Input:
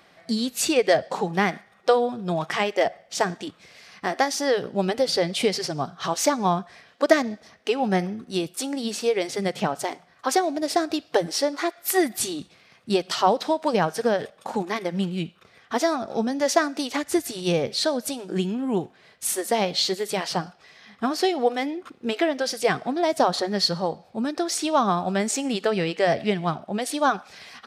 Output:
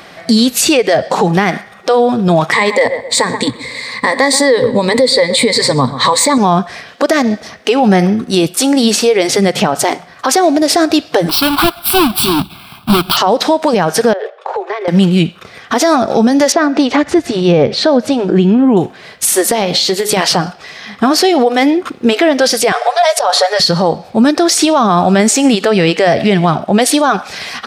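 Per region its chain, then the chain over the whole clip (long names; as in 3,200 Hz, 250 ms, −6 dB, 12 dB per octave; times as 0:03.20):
0:02.52–0:06.38: EQ curve with evenly spaced ripples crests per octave 0.99, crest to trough 17 dB + feedback echo with a low-pass in the loop 128 ms, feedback 30%, low-pass 1,900 Hz, level −18 dB
0:11.29–0:13.17: each half-wave held at its own peak + phaser with its sweep stopped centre 1,900 Hz, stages 6
0:14.13–0:14.88: Chebyshev high-pass filter 380 Hz, order 8 + downward compressor 5 to 1, threshold −32 dBFS + head-to-tape spacing loss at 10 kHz 31 dB
0:16.52–0:18.77: upward compression, threshold −26 dBFS + head-to-tape spacing loss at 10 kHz 24 dB
0:19.50–0:20.17: downward compressor 12 to 1, threshold −28 dBFS + hum removal 105.2 Hz, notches 31
0:22.72–0:23.60: linear-phase brick-wall band-pass 430–12,000 Hz + comb filter 6.9 ms, depth 53% + compressor whose output falls as the input rises −23 dBFS, ratio −0.5
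whole clip: downward compressor 2.5 to 1, threshold −22 dBFS; boost into a limiter +20.5 dB; level −1 dB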